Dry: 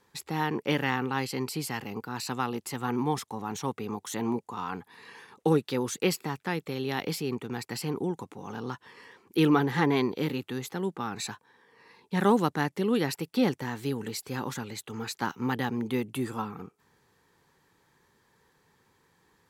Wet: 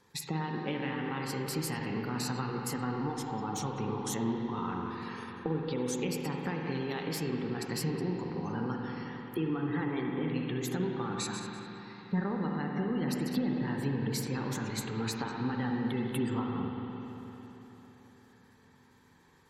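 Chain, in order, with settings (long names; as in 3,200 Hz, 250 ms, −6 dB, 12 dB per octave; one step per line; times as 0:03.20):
feedback delay that plays each chunk backwards 100 ms, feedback 45%, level −10.5 dB
gate on every frequency bin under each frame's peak −25 dB strong
low-shelf EQ 170 Hz −11.5 dB
hum removal 210.5 Hz, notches 36
downward compressor 10 to 1, threshold −35 dBFS, peak gain reduction 16.5 dB
bass and treble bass +12 dB, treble +3 dB
spring reverb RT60 3.9 s, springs 44/56 ms, chirp 55 ms, DRR 1 dB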